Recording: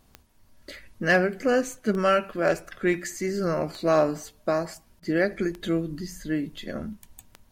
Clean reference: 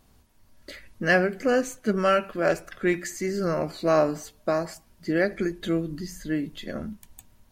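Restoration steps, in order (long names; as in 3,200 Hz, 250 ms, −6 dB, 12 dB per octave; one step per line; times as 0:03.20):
clipped peaks rebuilt −11.5 dBFS
click removal
repair the gap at 0:05.00, 22 ms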